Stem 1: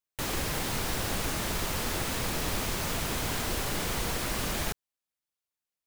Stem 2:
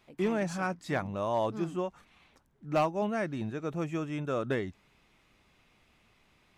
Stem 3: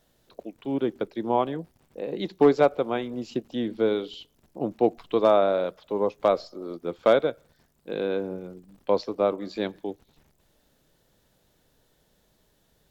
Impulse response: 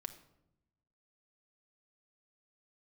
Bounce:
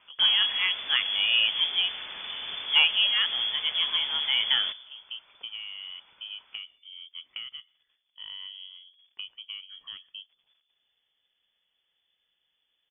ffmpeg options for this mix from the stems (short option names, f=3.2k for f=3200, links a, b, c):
-filter_complex "[0:a]volume=-9.5dB,asplit=2[a][b];[b]volume=-3.5dB[c];[1:a]volume=2.5dB,asplit=3[d][e][f];[e]volume=-3dB[g];[2:a]acompressor=threshold=-27dB:ratio=6,adelay=300,volume=-9.5dB[h];[f]apad=whole_len=582405[i];[h][i]sidechaincompress=threshold=-45dB:ratio=8:attack=16:release=310[j];[3:a]atrim=start_sample=2205[k];[c][g]amix=inputs=2:normalize=0[l];[l][k]afir=irnorm=-1:irlink=0[m];[a][d][j][m]amix=inputs=4:normalize=0,lowpass=f=3k:t=q:w=0.5098,lowpass=f=3k:t=q:w=0.6013,lowpass=f=3k:t=q:w=0.9,lowpass=f=3k:t=q:w=2.563,afreqshift=-3500"